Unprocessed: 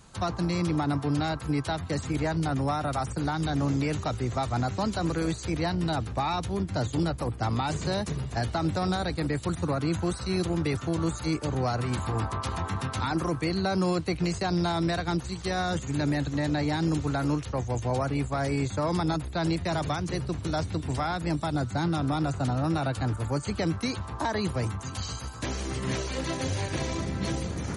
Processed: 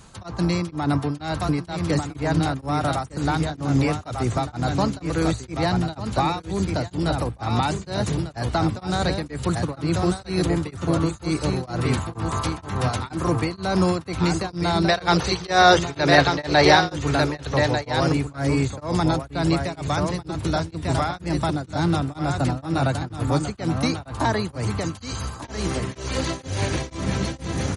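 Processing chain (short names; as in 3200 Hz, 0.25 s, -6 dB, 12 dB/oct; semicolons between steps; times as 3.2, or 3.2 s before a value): spectral gain 14.88–16.92, 360–6300 Hz +11 dB; echo 1.196 s -5.5 dB; beating tremolo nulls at 2.1 Hz; gain +6.5 dB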